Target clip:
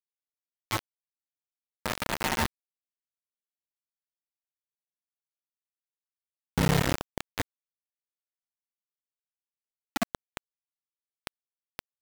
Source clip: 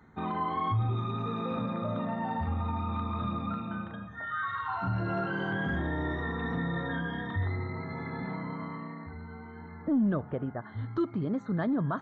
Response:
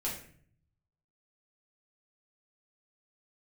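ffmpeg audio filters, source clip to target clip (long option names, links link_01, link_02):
-filter_complex "[0:a]asoftclip=type=hard:threshold=-22.5dB,asplit=3[link_01][link_02][link_03];[link_01]afade=type=out:start_time=6.55:duration=0.02[link_04];[link_02]asubboost=boost=8:cutoff=170,afade=type=in:start_time=6.55:duration=0.02,afade=type=out:start_time=7.19:duration=0.02[link_05];[link_03]afade=type=in:start_time=7.19:duration=0.02[link_06];[link_04][link_05][link_06]amix=inputs=3:normalize=0,asplit=2[link_07][link_08];[link_08]adelay=21,volume=-9dB[link_09];[link_07][link_09]amix=inputs=2:normalize=0,flanger=delay=16.5:depth=6.8:speed=0.24,asplit=3[link_10][link_11][link_12];[link_10]afade=type=out:start_time=1.84:duration=0.02[link_13];[link_11]acontrast=37,afade=type=in:start_time=1.84:duration=0.02,afade=type=out:start_time=2.46:duration=0.02[link_14];[link_12]afade=type=in:start_time=2.46:duration=0.02[link_15];[link_13][link_14][link_15]amix=inputs=3:normalize=0,acrusher=bits=3:mix=0:aa=0.000001,acompressor=mode=upward:threshold=-33dB:ratio=2.5"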